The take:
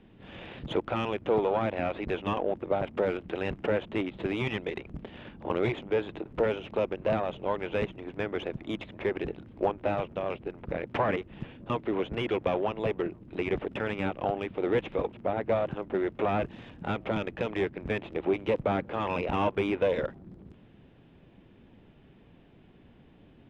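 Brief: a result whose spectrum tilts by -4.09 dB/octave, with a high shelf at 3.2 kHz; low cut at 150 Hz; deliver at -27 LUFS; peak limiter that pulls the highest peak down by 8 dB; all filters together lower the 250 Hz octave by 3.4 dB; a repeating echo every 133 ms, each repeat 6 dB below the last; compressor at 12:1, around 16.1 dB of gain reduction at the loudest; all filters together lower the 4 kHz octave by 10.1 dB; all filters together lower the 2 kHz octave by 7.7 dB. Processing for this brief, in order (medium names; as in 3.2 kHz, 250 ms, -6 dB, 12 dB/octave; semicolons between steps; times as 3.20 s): high-pass 150 Hz; peaking EQ 250 Hz -4 dB; peaking EQ 2 kHz -5.5 dB; treble shelf 3.2 kHz -8 dB; peaking EQ 4 kHz -6 dB; compression 12:1, threshold -40 dBFS; peak limiter -35 dBFS; feedback delay 133 ms, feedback 50%, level -6 dB; trim +19 dB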